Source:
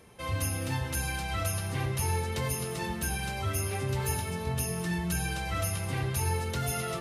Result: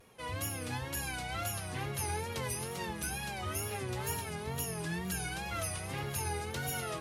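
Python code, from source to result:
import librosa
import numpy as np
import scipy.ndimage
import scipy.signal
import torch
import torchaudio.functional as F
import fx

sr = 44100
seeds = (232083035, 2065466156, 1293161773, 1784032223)

p1 = fx.low_shelf(x, sr, hz=140.0, db=-8.0)
p2 = p1 + fx.echo_alternate(p1, sr, ms=506, hz=1300.0, feedback_pct=73, wet_db=-14, dry=0)
p3 = fx.wow_flutter(p2, sr, seeds[0], rate_hz=2.1, depth_cents=110.0)
p4 = fx.cheby_harmonics(p3, sr, harmonics=(2, 7), levels_db=(-23, -43), full_scale_db=-19.5)
y = F.gain(torch.from_numpy(p4), -3.5).numpy()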